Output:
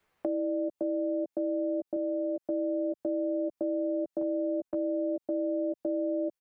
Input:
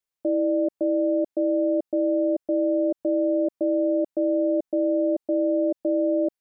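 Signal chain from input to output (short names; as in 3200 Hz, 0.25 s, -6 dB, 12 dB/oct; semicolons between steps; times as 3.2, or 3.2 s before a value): 4.21–5.28 gate with hold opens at -20 dBFS; compressor, threshold -29 dBFS, peak gain reduction 9 dB; doubler 12 ms -3 dB; limiter -24 dBFS, peak gain reduction 6.5 dB; 1.96–2.48 HPF 300 Hz 6 dB/oct; three-band squash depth 70%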